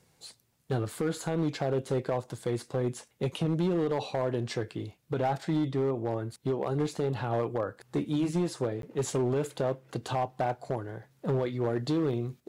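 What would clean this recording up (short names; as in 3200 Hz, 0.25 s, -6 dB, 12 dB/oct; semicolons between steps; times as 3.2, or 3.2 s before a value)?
clip repair -22.5 dBFS; interpolate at 8.82, 12 ms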